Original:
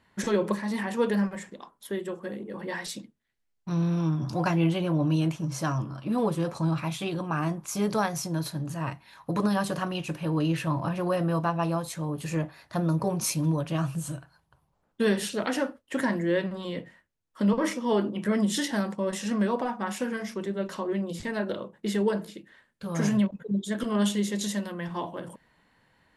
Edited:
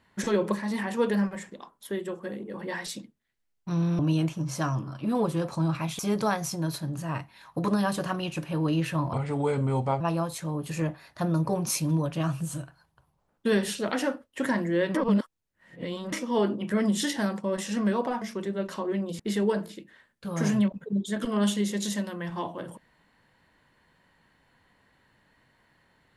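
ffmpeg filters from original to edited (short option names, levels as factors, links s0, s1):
-filter_complex "[0:a]asplit=9[s0][s1][s2][s3][s4][s5][s6][s7][s8];[s0]atrim=end=3.992[s9];[s1]atrim=start=5.018:end=7.022[s10];[s2]atrim=start=7.708:end=10.854[s11];[s3]atrim=start=10.85:end=11.55,asetpts=PTS-STARTPTS,asetrate=35280,aresample=44100[s12];[s4]atrim=start=11.546:end=16.492[s13];[s5]atrim=start=16.488:end=17.672,asetpts=PTS-STARTPTS,areverse[s14];[s6]atrim=start=17.668:end=19.762[s15];[s7]atrim=start=20.218:end=21.202[s16];[s8]atrim=start=21.778[s17];[s9][s10]acrossfade=d=0.004:c1=hsin:c2=hsin[s18];[s18][s11]acrossfade=d=0.004:c1=hsin:c2=hsin[s19];[s19][s12]acrossfade=d=0.004:c1=hsin:c2=hsin[s20];[s20][s13]acrossfade=d=0.004:c1=hsin:c2=hsin[s21];[s21][s14]acrossfade=d=0.004:c1=hsin:c2=hsin[s22];[s22][s15]acrossfade=d=0.004:c1=hsin:c2=hsin[s23];[s23][s16]acrossfade=d=0.004:c1=hsin:c2=hsin[s24];[s24][s17]acrossfade=d=0.004:c1=hsin:c2=hsin"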